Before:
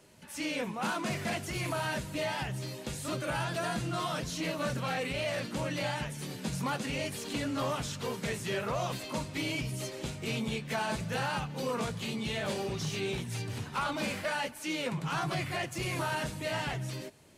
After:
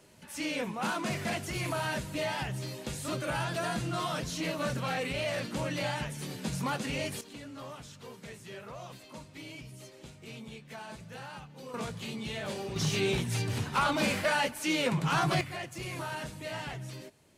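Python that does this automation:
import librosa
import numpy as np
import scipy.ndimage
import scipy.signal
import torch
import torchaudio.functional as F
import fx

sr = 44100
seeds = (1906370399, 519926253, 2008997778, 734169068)

y = fx.gain(x, sr, db=fx.steps((0.0, 0.5), (7.21, -11.5), (11.74, -3.0), (12.76, 5.0), (15.41, -4.5)))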